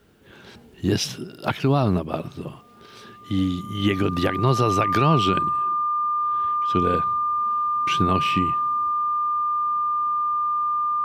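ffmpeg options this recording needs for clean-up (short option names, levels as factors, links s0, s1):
-af "bandreject=f=1200:w=30"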